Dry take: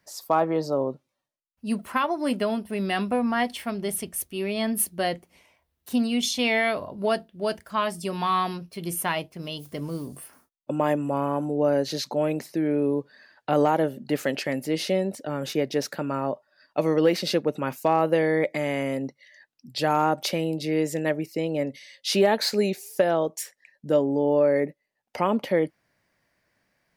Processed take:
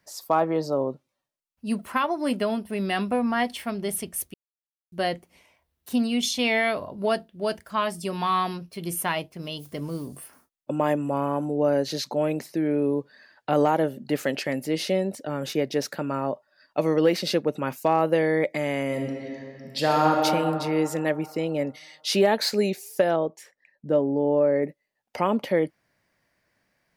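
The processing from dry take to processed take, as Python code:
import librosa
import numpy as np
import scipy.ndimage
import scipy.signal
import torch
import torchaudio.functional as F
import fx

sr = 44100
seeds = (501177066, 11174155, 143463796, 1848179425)

y = fx.reverb_throw(x, sr, start_s=18.86, length_s=1.33, rt60_s=2.8, drr_db=0.0)
y = fx.lowpass(y, sr, hz=1400.0, slope=6, at=(23.16, 24.63))
y = fx.edit(y, sr, fx.silence(start_s=4.34, length_s=0.58), tone=tone)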